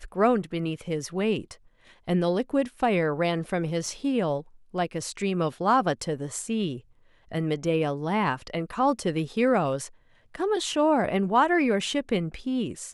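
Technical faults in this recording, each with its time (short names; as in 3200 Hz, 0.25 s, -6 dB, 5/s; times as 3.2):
3.86 gap 2.6 ms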